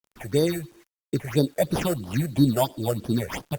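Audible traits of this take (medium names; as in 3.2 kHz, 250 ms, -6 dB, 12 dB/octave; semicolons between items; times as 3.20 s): aliases and images of a low sample rate 4.1 kHz, jitter 0%; phasing stages 6, 3 Hz, lowest notch 260–2300 Hz; a quantiser's noise floor 10-bit, dither none; Opus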